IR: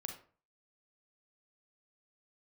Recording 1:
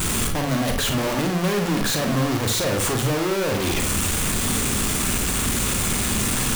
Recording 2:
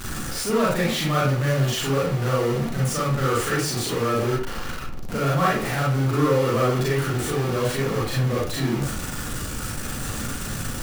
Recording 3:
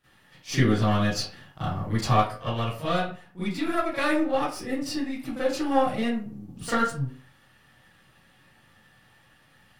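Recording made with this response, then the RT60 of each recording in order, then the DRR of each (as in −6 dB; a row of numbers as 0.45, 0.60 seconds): 1; 0.40, 0.40, 0.40 seconds; 3.5, −6.0, −16.0 decibels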